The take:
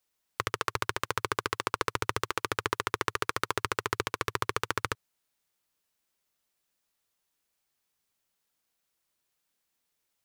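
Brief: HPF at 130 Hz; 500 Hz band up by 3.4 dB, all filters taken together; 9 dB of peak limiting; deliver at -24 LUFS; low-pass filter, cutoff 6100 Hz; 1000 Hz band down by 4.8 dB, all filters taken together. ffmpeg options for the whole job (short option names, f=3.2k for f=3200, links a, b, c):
-af "highpass=130,lowpass=6.1k,equalizer=f=500:t=o:g=5.5,equalizer=f=1k:t=o:g=-7,volume=17dB,alimiter=limit=0dB:level=0:latency=1"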